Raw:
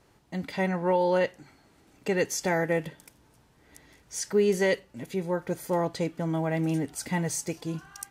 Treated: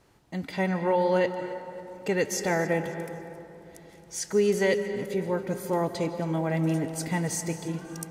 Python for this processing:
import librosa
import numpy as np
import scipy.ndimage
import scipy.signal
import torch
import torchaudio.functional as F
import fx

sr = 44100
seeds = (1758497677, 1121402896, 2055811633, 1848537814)

p1 = x + fx.echo_feedback(x, sr, ms=273, feedback_pct=39, wet_db=-18, dry=0)
y = fx.rev_freeverb(p1, sr, rt60_s=3.3, hf_ratio=0.3, predelay_ms=110, drr_db=9.0)